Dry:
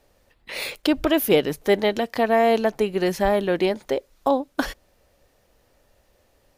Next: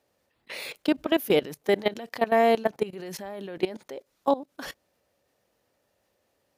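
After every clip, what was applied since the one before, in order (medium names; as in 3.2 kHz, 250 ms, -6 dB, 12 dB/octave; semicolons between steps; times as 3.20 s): high-pass 120 Hz 12 dB/octave; level held to a coarse grid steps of 18 dB; trim -1 dB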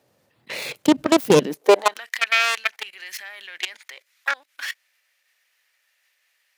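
self-modulated delay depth 0.32 ms; high-pass sweep 120 Hz -> 2 kHz, 1.31–2.10 s; trim +7 dB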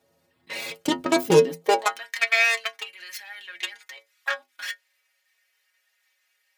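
inharmonic resonator 82 Hz, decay 0.27 s, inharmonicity 0.008; trim +5.5 dB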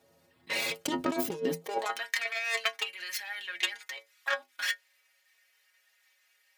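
compressor with a negative ratio -27 dBFS, ratio -1; trim -3.5 dB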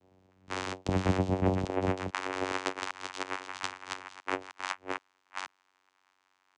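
chunks repeated in reverse 420 ms, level -3 dB; vocoder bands 4, saw 93.6 Hz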